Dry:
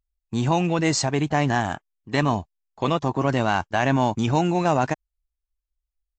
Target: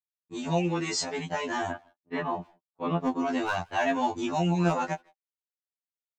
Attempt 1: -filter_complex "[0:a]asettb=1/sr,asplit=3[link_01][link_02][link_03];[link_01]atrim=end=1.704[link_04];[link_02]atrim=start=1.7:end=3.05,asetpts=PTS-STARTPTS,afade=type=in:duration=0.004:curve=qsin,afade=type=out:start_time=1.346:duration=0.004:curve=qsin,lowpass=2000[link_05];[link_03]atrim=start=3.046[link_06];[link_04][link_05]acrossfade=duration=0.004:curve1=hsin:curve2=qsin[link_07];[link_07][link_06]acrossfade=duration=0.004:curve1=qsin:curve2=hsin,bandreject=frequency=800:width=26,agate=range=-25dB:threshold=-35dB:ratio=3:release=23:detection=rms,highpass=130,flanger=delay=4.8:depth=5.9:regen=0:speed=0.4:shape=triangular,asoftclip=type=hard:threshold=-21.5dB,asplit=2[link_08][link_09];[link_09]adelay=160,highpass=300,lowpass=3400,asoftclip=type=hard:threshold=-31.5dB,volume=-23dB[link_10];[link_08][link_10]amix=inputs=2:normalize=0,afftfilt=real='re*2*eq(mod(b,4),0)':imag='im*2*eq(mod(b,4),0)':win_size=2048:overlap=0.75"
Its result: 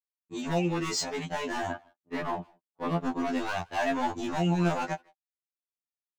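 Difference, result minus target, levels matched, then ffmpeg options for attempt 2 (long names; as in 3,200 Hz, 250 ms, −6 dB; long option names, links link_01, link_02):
hard clipping: distortion +15 dB
-filter_complex "[0:a]asettb=1/sr,asplit=3[link_01][link_02][link_03];[link_01]atrim=end=1.704[link_04];[link_02]atrim=start=1.7:end=3.05,asetpts=PTS-STARTPTS,afade=type=in:duration=0.004:curve=qsin,afade=type=out:start_time=1.346:duration=0.004:curve=qsin,lowpass=2000[link_05];[link_03]atrim=start=3.046[link_06];[link_04][link_05]acrossfade=duration=0.004:curve1=hsin:curve2=qsin[link_07];[link_07][link_06]acrossfade=duration=0.004:curve1=qsin:curve2=hsin,bandreject=frequency=800:width=26,agate=range=-25dB:threshold=-35dB:ratio=3:release=23:detection=rms,highpass=130,flanger=delay=4.8:depth=5.9:regen=0:speed=0.4:shape=triangular,asoftclip=type=hard:threshold=-13dB,asplit=2[link_08][link_09];[link_09]adelay=160,highpass=300,lowpass=3400,asoftclip=type=hard:threshold=-31.5dB,volume=-23dB[link_10];[link_08][link_10]amix=inputs=2:normalize=0,afftfilt=real='re*2*eq(mod(b,4),0)':imag='im*2*eq(mod(b,4),0)':win_size=2048:overlap=0.75"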